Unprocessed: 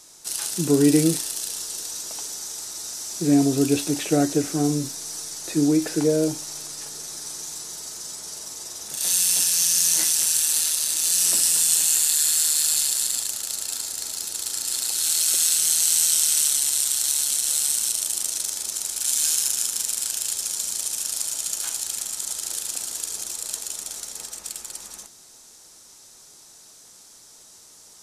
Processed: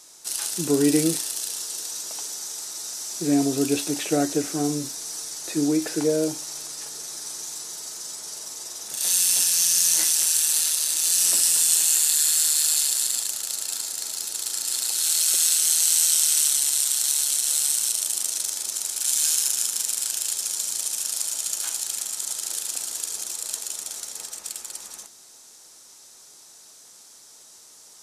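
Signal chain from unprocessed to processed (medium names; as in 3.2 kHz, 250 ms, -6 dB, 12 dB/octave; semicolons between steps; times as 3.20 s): bass shelf 180 Hz -10.5 dB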